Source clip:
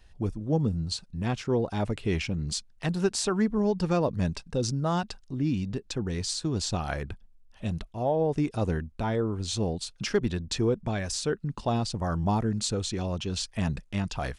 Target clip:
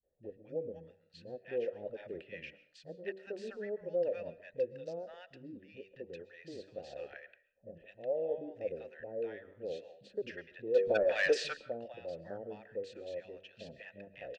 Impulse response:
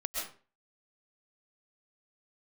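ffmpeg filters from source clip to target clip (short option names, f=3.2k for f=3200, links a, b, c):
-filter_complex "[0:a]asplit=3[a][b][c];[a]bandpass=f=530:t=q:w=8,volume=0dB[d];[b]bandpass=f=1.84k:t=q:w=8,volume=-6dB[e];[c]bandpass=f=2.48k:t=q:w=8,volume=-9dB[f];[d][e][f]amix=inputs=3:normalize=0,aemphasis=mode=reproduction:type=50fm,bandreject=f=96.12:t=h:w=4,bandreject=f=192.24:t=h:w=4,bandreject=f=288.36:t=h:w=4,bandreject=f=384.48:t=h:w=4,bandreject=f=480.6:t=h:w=4,bandreject=f=576.72:t=h:w=4,bandreject=f=672.84:t=h:w=4,asplit=3[g][h][i];[g]afade=t=out:st=10.71:d=0.02[j];[h]asplit=2[k][l];[l]highpass=f=720:p=1,volume=28dB,asoftclip=type=tanh:threshold=-15dB[m];[k][m]amix=inputs=2:normalize=0,lowpass=f=6.9k:p=1,volume=-6dB,afade=t=in:st=10.71:d=0.02,afade=t=out:st=11.29:d=0.02[n];[i]afade=t=in:st=11.29:d=0.02[o];[j][n][o]amix=inputs=3:normalize=0,acrossover=split=190|830[p][q][r];[q]adelay=30[s];[r]adelay=230[t];[p][s][t]amix=inputs=3:normalize=0,asplit=2[u][v];[1:a]atrim=start_sample=2205[w];[v][w]afir=irnorm=-1:irlink=0,volume=-18dB[x];[u][x]amix=inputs=2:normalize=0"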